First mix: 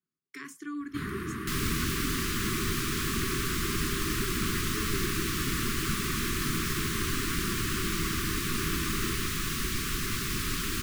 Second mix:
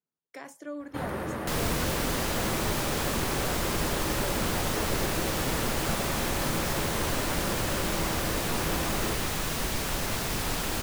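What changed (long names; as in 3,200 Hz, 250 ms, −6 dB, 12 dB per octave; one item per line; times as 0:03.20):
speech −4.0 dB
master: remove Chebyshev band-stop filter 400–1,100 Hz, order 4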